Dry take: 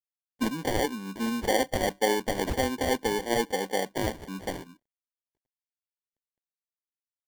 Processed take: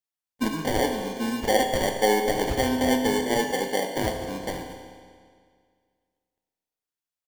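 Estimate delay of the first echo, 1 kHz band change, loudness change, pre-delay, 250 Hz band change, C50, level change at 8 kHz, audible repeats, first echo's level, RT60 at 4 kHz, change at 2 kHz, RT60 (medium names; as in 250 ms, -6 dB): 229 ms, +4.0 dB, +3.5 dB, 7 ms, +4.0 dB, 4.5 dB, +3.0 dB, 1, -16.5 dB, 1.8 s, +3.0 dB, 2.0 s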